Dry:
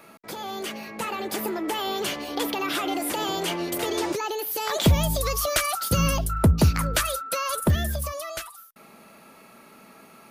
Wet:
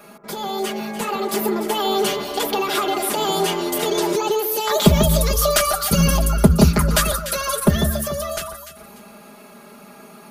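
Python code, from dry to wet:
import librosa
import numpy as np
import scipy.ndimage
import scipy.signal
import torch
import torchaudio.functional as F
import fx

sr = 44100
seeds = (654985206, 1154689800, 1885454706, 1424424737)

y = fx.peak_eq(x, sr, hz=2300.0, db=-3.5, octaves=0.92)
y = y + 0.94 * np.pad(y, (int(4.9 * sr / 1000.0), 0))[:len(y)]
y = fx.echo_alternate(y, sr, ms=147, hz=1500.0, feedback_pct=53, wet_db=-6.0)
y = y * librosa.db_to_amplitude(3.5)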